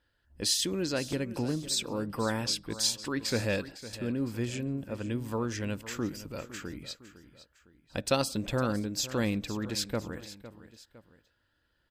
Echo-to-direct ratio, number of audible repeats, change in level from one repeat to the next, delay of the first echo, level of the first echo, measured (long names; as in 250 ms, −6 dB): −14.0 dB, 2, −7.0 dB, 507 ms, −15.0 dB